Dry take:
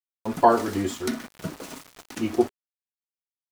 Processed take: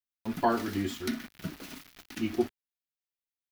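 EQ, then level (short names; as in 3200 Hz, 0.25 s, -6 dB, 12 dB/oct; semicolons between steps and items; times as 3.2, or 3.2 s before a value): graphic EQ 125/500/1000/8000 Hz -5/-11/-8/-10 dB; 0.0 dB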